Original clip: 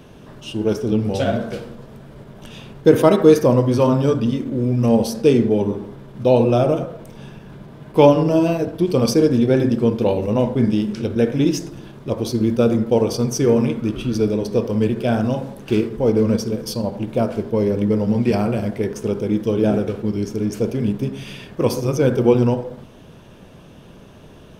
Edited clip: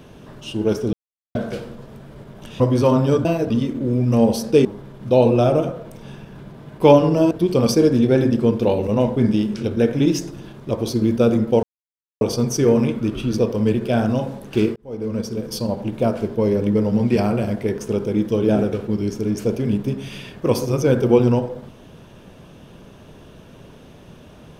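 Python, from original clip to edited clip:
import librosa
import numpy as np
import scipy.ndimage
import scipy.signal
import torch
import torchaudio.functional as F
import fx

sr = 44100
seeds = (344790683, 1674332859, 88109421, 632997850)

y = fx.edit(x, sr, fx.silence(start_s=0.93, length_s=0.42),
    fx.cut(start_s=2.6, length_s=0.96),
    fx.cut(start_s=5.36, length_s=0.43),
    fx.move(start_s=8.45, length_s=0.25, to_s=4.21),
    fx.insert_silence(at_s=13.02, length_s=0.58),
    fx.cut(start_s=14.19, length_s=0.34),
    fx.fade_in_span(start_s=15.91, length_s=0.86), tone=tone)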